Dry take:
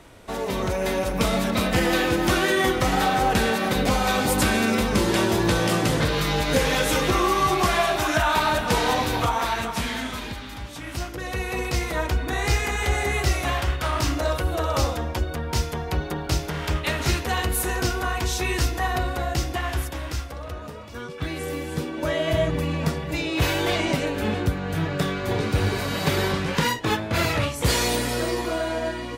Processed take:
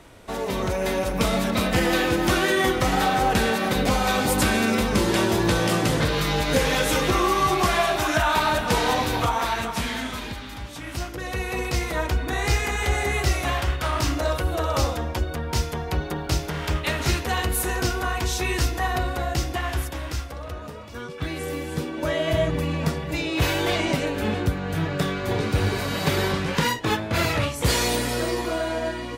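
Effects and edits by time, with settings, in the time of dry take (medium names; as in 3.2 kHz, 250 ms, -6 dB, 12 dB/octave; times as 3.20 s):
16.14–17.00 s: short-mantissa float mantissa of 6-bit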